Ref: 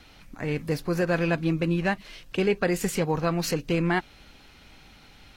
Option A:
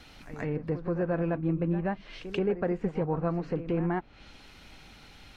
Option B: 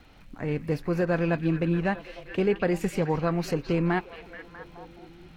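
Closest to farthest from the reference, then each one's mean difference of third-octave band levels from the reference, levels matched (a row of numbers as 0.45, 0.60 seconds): B, A; 4.5, 6.5 decibels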